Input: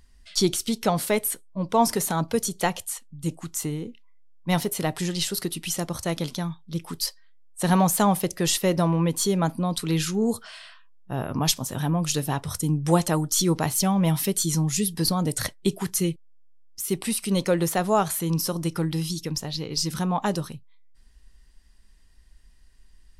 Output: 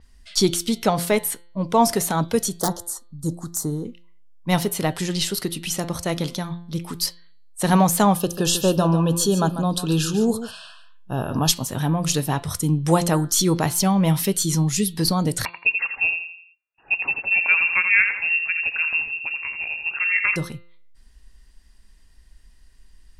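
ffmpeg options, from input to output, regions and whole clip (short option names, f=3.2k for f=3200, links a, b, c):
-filter_complex "[0:a]asettb=1/sr,asplit=3[a][b][c];[a]atrim=end=2.594[d];[b]atrim=start=2.59:end=3.85,asetpts=PTS-STARTPTS,afade=t=in:d=0.004:c=qsin,afade=t=out:st=1.256:d=0.004:c=qsin,aeval=exprs='(mod(5.96*val(0)+1,2)-1)/5.96':c=same,asuperstop=centerf=2500:order=4:qfactor=0.82[e];[c]atrim=start=3.846[f];[d][e]acrossfade=d=0.004:c1=hsin:c2=qsin[g];[g][f]acrossfade=d=0.004:c1=qsin:c2=hsin,asettb=1/sr,asplit=3[h][i][j];[h]atrim=end=8.154[k];[i]atrim=start=8.15:end=11.5,asetpts=PTS-STARTPTS,afade=t=in:d=0.004:c=qsin,afade=t=out:st=3.346:d=0.004:c=qsin,asuperstop=centerf=2100:order=12:qfactor=2.9,aecho=1:1:144:0.266,atrim=end_sample=147735[l];[j]atrim=start=11.496[m];[k][l]acrossfade=d=0.004:c1=hsin:c2=qsin[n];[n][m]acrossfade=d=0.004:c1=qsin:c2=hsin,asettb=1/sr,asplit=3[o][p][q];[o]atrim=end=15.454[r];[p]atrim=start=15.45:end=20.36,asetpts=PTS-STARTPTS,afade=t=in:d=0.004:c=qsin,afade=t=out:st=4.906:d=0.004:c=qsin,highpass=130,asplit=2[s][t];[t]adelay=84,lowpass=f=2.3k:p=1,volume=-6.5dB,asplit=2[u][v];[v]adelay=84,lowpass=f=2.3k:p=1,volume=0.45,asplit=2[w][x];[x]adelay=84,lowpass=f=2.3k:p=1,volume=0.45,asplit=2[y][z];[z]adelay=84,lowpass=f=2.3k:p=1,volume=0.45,asplit=2[aa][ab];[ab]adelay=84,lowpass=f=2.3k:p=1,volume=0.45[ac];[s][u][w][y][aa][ac]amix=inputs=6:normalize=0,atrim=end_sample=216531,lowpass=f=2.5k:t=q:w=0.5098,lowpass=f=2.5k:t=q:w=0.6013,lowpass=f=2.5k:t=q:w=0.9,lowpass=f=2.5k:t=q:w=2.563,afreqshift=-2900[ad];[q]atrim=start=20.356[ae];[r][ad]acrossfade=d=0.004:c1=hsin:c2=qsin[af];[af][ae]acrossfade=d=0.004:c1=qsin:c2=hsin,bandreject=f=172.2:t=h:w=4,bandreject=f=344.4:t=h:w=4,bandreject=f=516.6:t=h:w=4,bandreject=f=688.8:t=h:w=4,bandreject=f=861:t=h:w=4,bandreject=f=1.0332k:t=h:w=4,bandreject=f=1.2054k:t=h:w=4,bandreject=f=1.3776k:t=h:w=4,bandreject=f=1.5498k:t=h:w=4,bandreject=f=1.722k:t=h:w=4,bandreject=f=1.8942k:t=h:w=4,bandreject=f=2.0664k:t=h:w=4,bandreject=f=2.2386k:t=h:w=4,bandreject=f=2.4108k:t=h:w=4,bandreject=f=2.583k:t=h:w=4,bandreject=f=2.7552k:t=h:w=4,bandreject=f=2.9274k:t=h:w=4,bandreject=f=3.0996k:t=h:w=4,bandreject=f=3.2718k:t=h:w=4,bandreject=f=3.444k:t=h:w=4,bandreject=f=3.6162k:t=h:w=4,bandreject=f=3.7884k:t=h:w=4,bandreject=f=3.9606k:t=h:w=4,bandreject=f=4.1328k:t=h:w=4,bandreject=f=4.305k:t=h:w=4,bandreject=f=4.4772k:t=h:w=4,adynamicequalizer=threshold=0.01:dfrequency=6500:dqfactor=0.7:tfrequency=6500:tqfactor=0.7:attack=5:release=100:ratio=0.375:range=1.5:mode=cutabove:tftype=highshelf,volume=3.5dB"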